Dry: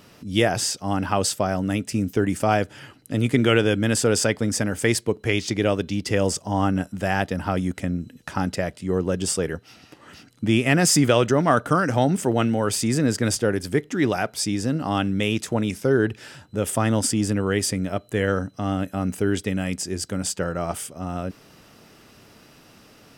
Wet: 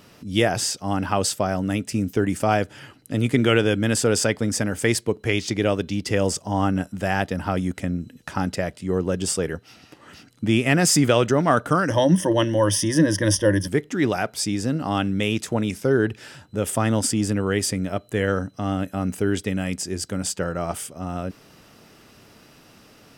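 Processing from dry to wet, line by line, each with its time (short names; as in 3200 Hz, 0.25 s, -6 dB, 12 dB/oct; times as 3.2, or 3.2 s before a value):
11.9–13.68 ripple EQ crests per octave 1.2, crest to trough 17 dB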